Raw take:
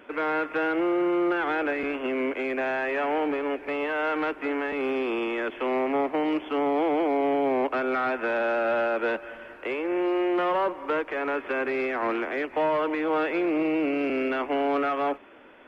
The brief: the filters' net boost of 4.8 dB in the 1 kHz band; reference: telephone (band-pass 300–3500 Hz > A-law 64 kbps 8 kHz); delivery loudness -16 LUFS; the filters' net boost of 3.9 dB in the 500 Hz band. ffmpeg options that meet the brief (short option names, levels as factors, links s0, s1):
-af "highpass=300,lowpass=3500,equalizer=f=500:t=o:g=4.5,equalizer=f=1000:t=o:g=5,volume=2.37" -ar 8000 -c:a pcm_alaw